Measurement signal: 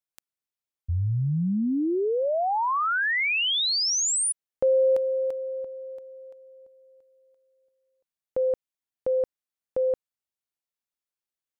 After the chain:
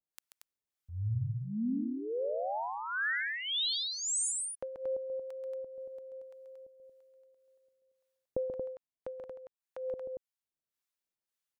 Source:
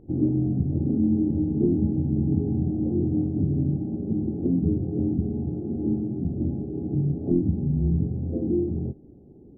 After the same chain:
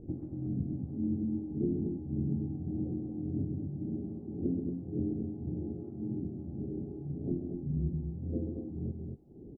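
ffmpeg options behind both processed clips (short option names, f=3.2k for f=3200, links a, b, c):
-filter_complex "[0:a]acompressor=threshold=-41dB:ratio=2:attack=67:release=604:detection=rms,acrossover=split=750[a][b];[a]aeval=exprs='val(0)*(1-1/2+1/2*cos(2*PI*1.8*n/s))':c=same[c];[b]aeval=exprs='val(0)*(1-1/2-1/2*cos(2*PI*1.8*n/s))':c=same[d];[c][d]amix=inputs=2:normalize=0,asplit=2[e][f];[f]aecho=0:1:134.1|230.3:0.447|0.562[g];[e][g]amix=inputs=2:normalize=0,volume=2.5dB"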